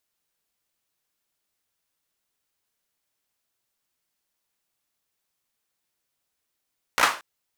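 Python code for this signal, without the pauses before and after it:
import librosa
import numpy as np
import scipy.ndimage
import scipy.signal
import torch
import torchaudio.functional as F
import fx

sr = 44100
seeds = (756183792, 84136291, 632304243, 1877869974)

y = fx.drum_clap(sr, seeds[0], length_s=0.23, bursts=4, spacing_ms=16, hz=1200.0, decay_s=0.34)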